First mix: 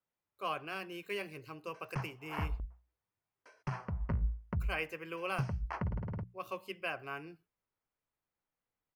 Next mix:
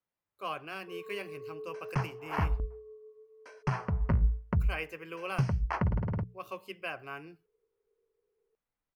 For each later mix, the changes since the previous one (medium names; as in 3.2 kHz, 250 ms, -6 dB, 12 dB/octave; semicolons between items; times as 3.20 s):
first sound: unmuted; second sound +7.0 dB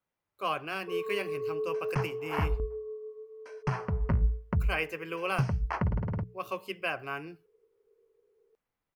speech +5.5 dB; first sound +10.0 dB